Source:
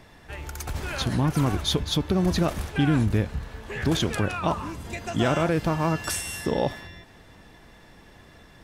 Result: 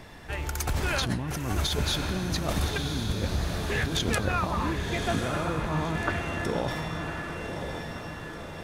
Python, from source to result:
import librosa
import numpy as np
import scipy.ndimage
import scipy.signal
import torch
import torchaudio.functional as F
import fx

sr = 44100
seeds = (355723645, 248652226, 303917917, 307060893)

y = fx.lowpass(x, sr, hz=2300.0, slope=24, at=(4.18, 6.45))
y = fx.over_compress(y, sr, threshold_db=-29.0, ratio=-1.0)
y = fx.echo_diffused(y, sr, ms=1085, feedback_pct=52, wet_db=-5)